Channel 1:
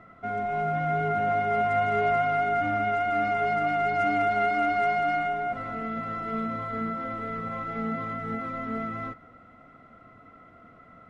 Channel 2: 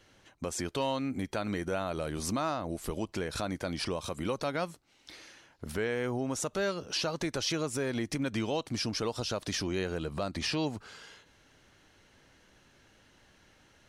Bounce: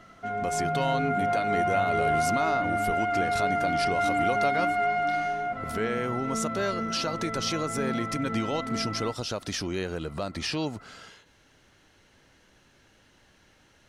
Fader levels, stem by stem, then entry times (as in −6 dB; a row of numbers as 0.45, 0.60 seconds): −1.0, +1.5 decibels; 0.00, 0.00 seconds